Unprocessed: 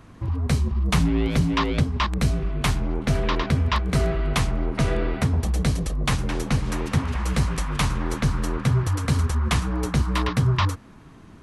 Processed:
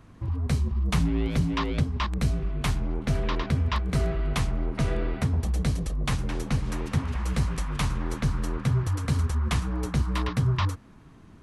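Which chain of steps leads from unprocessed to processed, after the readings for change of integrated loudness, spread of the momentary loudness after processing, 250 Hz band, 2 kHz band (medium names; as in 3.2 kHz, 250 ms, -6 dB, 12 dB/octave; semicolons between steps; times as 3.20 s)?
-4.0 dB, 4 LU, -4.5 dB, -6.0 dB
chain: bass shelf 200 Hz +3.5 dB; trim -6 dB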